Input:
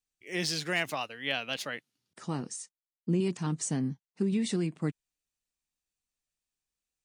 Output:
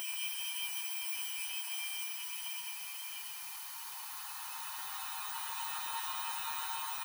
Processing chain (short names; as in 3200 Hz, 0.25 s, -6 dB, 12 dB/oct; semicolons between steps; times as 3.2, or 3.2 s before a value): FFT order left unsorted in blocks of 16 samples; Paulstretch 26×, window 0.25 s, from 3.22; on a send: echo 0.135 s -4 dB; on the sum: added noise white -53 dBFS; brick-wall FIR high-pass 770 Hz